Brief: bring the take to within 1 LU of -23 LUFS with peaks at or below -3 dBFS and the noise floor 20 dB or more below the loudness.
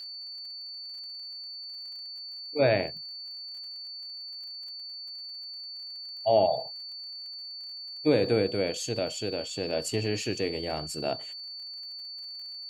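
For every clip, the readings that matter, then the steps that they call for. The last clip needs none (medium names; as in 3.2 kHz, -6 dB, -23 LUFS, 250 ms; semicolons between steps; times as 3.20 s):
tick rate 61 per s; steady tone 4.5 kHz; tone level -38 dBFS; loudness -31.5 LUFS; peak level -11.0 dBFS; loudness target -23.0 LUFS
-> de-click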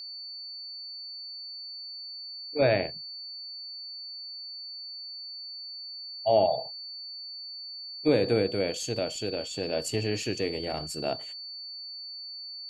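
tick rate 0 per s; steady tone 4.5 kHz; tone level -38 dBFS
-> band-stop 4.5 kHz, Q 30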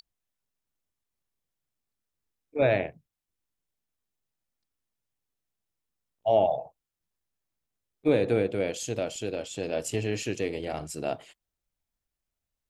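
steady tone not found; loudness -29.0 LUFS; peak level -11.5 dBFS; loudness target -23.0 LUFS
-> trim +6 dB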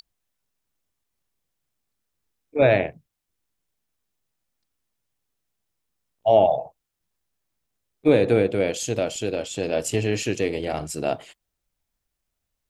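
loudness -23.0 LUFS; peak level -5.5 dBFS; noise floor -81 dBFS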